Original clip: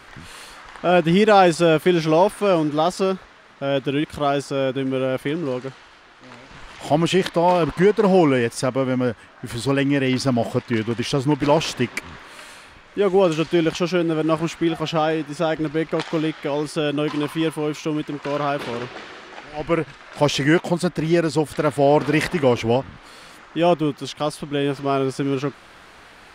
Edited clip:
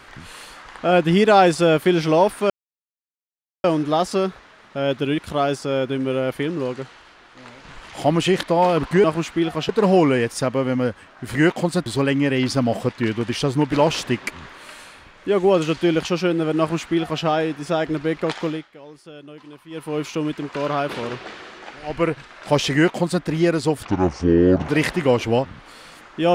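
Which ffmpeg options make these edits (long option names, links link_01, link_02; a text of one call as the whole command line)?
ffmpeg -i in.wav -filter_complex "[0:a]asplit=10[link_01][link_02][link_03][link_04][link_05][link_06][link_07][link_08][link_09][link_10];[link_01]atrim=end=2.5,asetpts=PTS-STARTPTS,afade=type=out:start_time=2.496:duration=0.004:curve=hsin,apad=pad_dur=1.14[link_11];[link_02]atrim=start=2.5:end=7.902,asetpts=PTS-STARTPTS,afade=type=in:duration=0.004:curve=hsin[link_12];[link_03]atrim=start=14.288:end=14.942[link_13];[link_04]atrim=start=7.898:end=9.562[link_14];[link_05]atrim=start=20.428:end=20.942[link_15];[link_06]atrim=start=9.558:end=16.39,asetpts=PTS-STARTPTS,afade=type=out:start_time=6.542:duration=0.29:silence=0.11885[link_16];[link_07]atrim=start=16.39:end=17.4,asetpts=PTS-STARTPTS,volume=-18.5dB[link_17];[link_08]atrim=start=17.4:end=21.554,asetpts=PTS-STARTPTS,afade=type=in:duration=0.29:silence=0.11885[link_18];[link_09]atrim=start=21.55:end=22.06,asetpts=PTS-STARTPTS,asetrate=26901,aresample=44100,atrim=end_sample=36870,asetpts=PTS-STARTPTS[link_19];[link_10]atrim=start=22.056[link_20];[link_11][link_12]concat=n=2:v=0:a=1[link_21];[link_21][link_13]acrossfade=duration=0.004:curve1=hsin:curve2=hsin[link_22];[link_22][link_14]acrossfade=duration=0.004:curve1=hsin:curve2=hsin[link_23];[link_23][link_15]acrossfade=duration=0.004:curve1=hsin:curve2=hsin[link_24];[link_16][link_17][link_18]concat=n=3:v=0:a=1[link_25];[link_24][link_25]acrossfade=duration=0.004:curve1=hsin:curve2=hsin[link_26];[link_26][link_19]acrossfade=duration=0.004:curve1=hsin:curve2=hsin[link_27];[link_27][link_20]acrossfade=duration=0.004:curve1=hsin:curve2=hsin" out.wav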